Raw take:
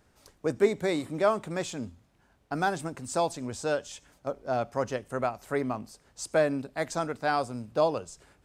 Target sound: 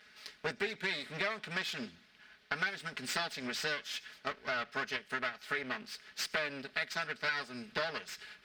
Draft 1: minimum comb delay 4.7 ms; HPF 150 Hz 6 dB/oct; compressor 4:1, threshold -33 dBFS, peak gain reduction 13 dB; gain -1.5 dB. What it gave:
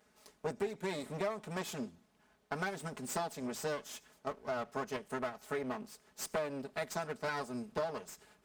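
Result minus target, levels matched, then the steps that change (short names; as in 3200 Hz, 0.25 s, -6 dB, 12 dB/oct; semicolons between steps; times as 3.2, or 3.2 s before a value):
2000 Hz band -6.5 dB
add after HPF: band shelf 2700 Hz +16 dB 2.2 oct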